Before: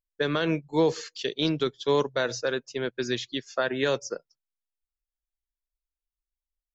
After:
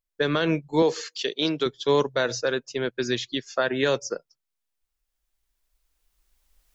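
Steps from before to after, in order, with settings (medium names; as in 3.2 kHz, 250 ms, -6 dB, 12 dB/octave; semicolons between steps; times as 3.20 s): recorder AGC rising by 9.3 dB/s; 0.82–1.66 s: Bessel high-pass 260 Hz, order 2; trim +2.5 dB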